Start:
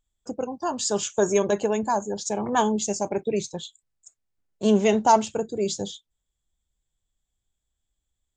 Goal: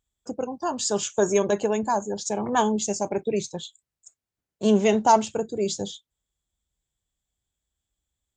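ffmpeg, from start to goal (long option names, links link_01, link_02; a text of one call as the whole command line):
ffmpeg -i in.wav -af "highpass=45" out.wav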